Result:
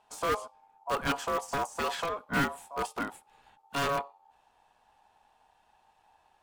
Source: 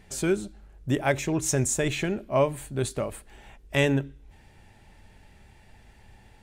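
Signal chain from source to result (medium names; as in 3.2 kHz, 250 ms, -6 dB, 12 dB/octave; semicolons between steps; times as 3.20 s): de-esser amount 65%; Chebyshev shaper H 4 -7 dB, 5 -10 dB, 6 -26 dB, 8 -32 dB, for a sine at -10 dBFS; ring modulator 840 Hz; in parallel at -11 dB: integer overflow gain 15 dB; on the sum: upward expansion 1.5:1, over -41 dBFS; trim -8 dB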